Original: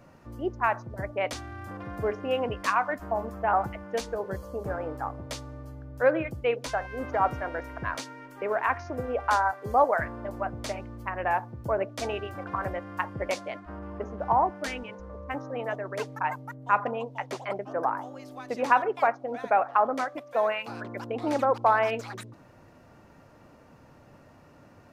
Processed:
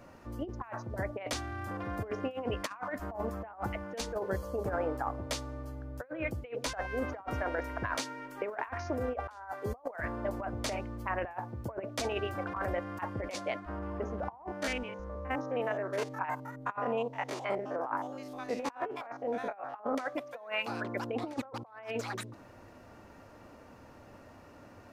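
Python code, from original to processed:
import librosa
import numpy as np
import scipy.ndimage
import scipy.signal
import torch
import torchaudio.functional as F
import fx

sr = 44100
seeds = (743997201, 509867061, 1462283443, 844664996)

y = fx.spec_steps(x, sr, hold_ms=50, at=(14.47, 19.95))
y = fx.peak_eq(y, sr, hz=150.0, db=-10.0, octaves=0.42)
y = fx.over_compress(y, sr, threshold_db=-32.0, ratio=-0.5)
y = y * librosa.db_to_amplitude(-2.5)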